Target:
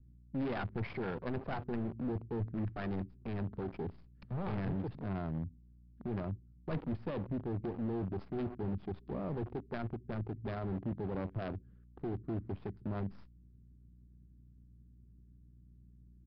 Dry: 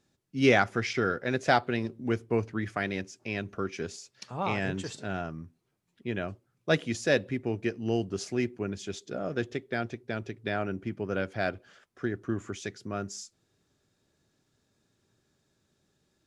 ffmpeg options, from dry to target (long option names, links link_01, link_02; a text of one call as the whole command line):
ffmpeg -i in.wav -filter_complex "[0:a]asplit=2[link_01][link_02];[link_02]acompressor=threshold=-39dB:ratio=20,volume=-2dB[link_03];[link_01][link_03]amix=inputs=2:normalize=0,aeval=exprs='val(0)+0.000891*(sin(2*PI*60*n/s)+sin(2*PI*2*60*n/s)/2+sin(2*PI*3*60*n/s)/3+sin(2*PI*4*60*n/s)/4+sin(2*PI*5*60*n/s)/5)':channel_layout=same,aeval=exprs='(tanh(50.1*val(0)+0.35)-tanh(0.35))/50.1':channel_layout=same,acrossover=split=270|890[link_04][link_05][link_06];[link_05]acrusher=bits=5:dc=4:mix=0:aa=0.000001[link_07];[link_06]aeval=exprs='0.0473*(cos(1*acos(clip(val(0)/0.0473,-1,1)))-cos(1*PI/2))+0.00944*(cos(2*acos(clip(val(0)/0.0473,-1,1)))-cos(2*PI/2))+0.0075*(cos(7*acos(clip(val(0)/0.0473,-1,1)))-cos(7*PI/2))+0.000596*(cos(8*acos(clip(val(0)/0.0473,-1,1)))-cos(8*PI/2))':channel_layout=same[link_08];[link_04][link_07][link_08]amix=inputs=3:normalize=0,adynamicsmooth=sensitivity=2:basefreq=970,aresample=11025,aresample=44100,volume=4.5dB" out.wav